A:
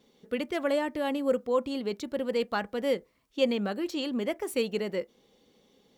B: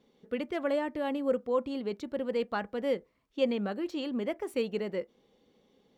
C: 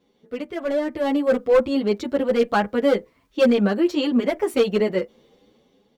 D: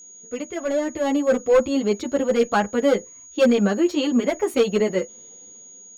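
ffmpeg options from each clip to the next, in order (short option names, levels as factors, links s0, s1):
-af "highshelf=f=4200:g=-11,volume=0.794"
-filter_complex "[0:a]volume=18.8,asoftclip=hard,volume=0.0531,dynaudnorm=f=280:g=7:m=3.16,asplit=2[s0][s1];[s1]adelay=8.3,afreqshift=2.8[s2];[s0][s2]amix=inputs=2:normalize=1,volume=1.88"
-af "aeval=exprs='val(0)+0.00794*sin(2*PI*6700*n/s)':c=same"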